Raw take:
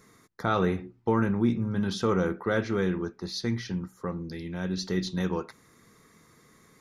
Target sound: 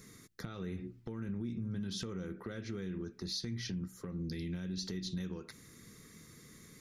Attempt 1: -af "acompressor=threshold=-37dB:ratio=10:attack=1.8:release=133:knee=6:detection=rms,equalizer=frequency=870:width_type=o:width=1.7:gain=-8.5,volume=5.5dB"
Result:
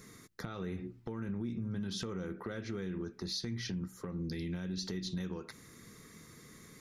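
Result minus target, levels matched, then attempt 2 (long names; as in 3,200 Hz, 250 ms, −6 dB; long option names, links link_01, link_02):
1,000 Hz band +4.0 dB
-af "acompressor=threshold=-37dB:ratio=10:attack=1.8:release=133:knee=6:detection=rms,equalizer=frequency=870:width_type=o:width=1.7:gain=-15,volume=5.5dB"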